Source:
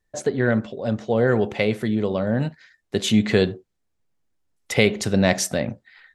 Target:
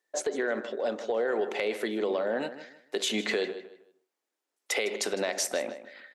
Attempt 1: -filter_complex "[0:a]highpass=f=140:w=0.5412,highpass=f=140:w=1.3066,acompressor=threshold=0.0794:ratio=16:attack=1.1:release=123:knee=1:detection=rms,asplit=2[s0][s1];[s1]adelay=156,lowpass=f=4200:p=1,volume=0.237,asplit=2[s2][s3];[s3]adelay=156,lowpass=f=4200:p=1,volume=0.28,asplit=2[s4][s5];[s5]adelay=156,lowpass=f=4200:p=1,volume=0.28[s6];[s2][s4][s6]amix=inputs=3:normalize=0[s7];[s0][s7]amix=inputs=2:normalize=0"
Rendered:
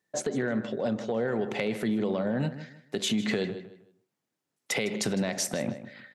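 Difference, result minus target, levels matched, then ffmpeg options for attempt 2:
125 Hz band +16.0 dB
-filter_complex "[0:a]highpass=f=340:w=0.5412,highpass=f=340:w=1.3066,acompressor=threshold=0.0794:ratio=16:attack=1.1:release=123:knee=1:detection=rms,asplit=2[s0][s1];[s1]adelay=156,lowpass=f=4200:p=1,volume=0.237,asplit=2[s2][s3];[s3]adelay=156,lowpass=f=4200:p=1,volume=0.28,asplit=2[s4][s5];[s5]adelay=156,lowpass=f=4200:p=1,volume=0.28[s6];[s2][s4][s6]amix=inputs=3:normalize=0[s7];[s0][s7]amix=inputs=2:normalize=0"

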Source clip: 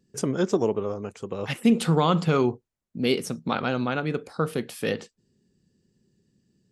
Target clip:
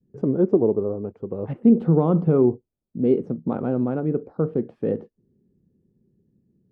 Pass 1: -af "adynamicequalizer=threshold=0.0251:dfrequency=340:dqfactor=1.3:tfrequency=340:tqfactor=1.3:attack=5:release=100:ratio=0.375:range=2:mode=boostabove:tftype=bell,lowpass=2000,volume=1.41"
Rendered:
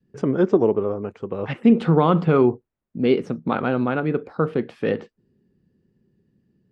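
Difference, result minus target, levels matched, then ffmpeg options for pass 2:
2 kHz band +16.0 dB
-af "adynamicequalizer=threshold=0.0251:dfrequency=340:dqfactor=1.3:tfrequency=340:tqfactor=1.3:attack=5:release=100:ratio=0.375:range=2:mode=boostabove:tftype=bell,lowpass=560,volume=1.41"

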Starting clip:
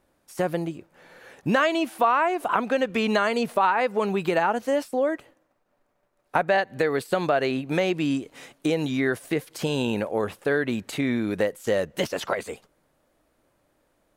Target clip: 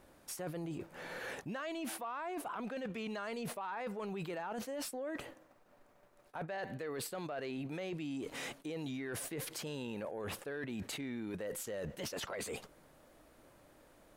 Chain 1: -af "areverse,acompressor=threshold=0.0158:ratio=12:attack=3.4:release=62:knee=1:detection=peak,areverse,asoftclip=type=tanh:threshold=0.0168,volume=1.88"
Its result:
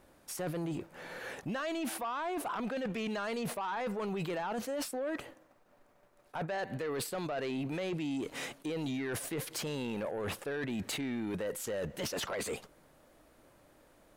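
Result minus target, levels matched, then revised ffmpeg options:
compression: peak gain reduction -7 dB
-af "areverse,acompressor=threshold=0.00668:ratio=12:attack=3.4:release=62:knee=1:detection=peak,areverse,asoftclip=type=tanh:threshold=0.0168,volume=1.88"

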